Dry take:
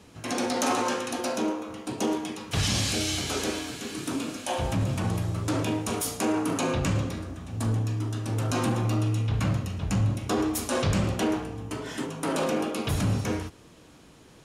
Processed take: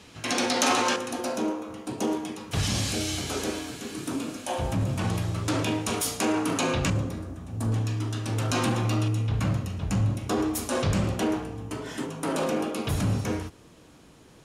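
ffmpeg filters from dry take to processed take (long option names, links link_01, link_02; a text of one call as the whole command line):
ffmpeg -i in.wav -af "asetnsamples=nb_out_samples=441:pad=0,asendcmd='0.96 equalizer g -3;4.99 equalizer g 4.5;6.9 equalizer g -6.5;7.72 equalizer g 5;9.08 equalizer g -1.5',equalizer=frequency=3300:width_type=o:width=2.6:gain=7.5" out.wav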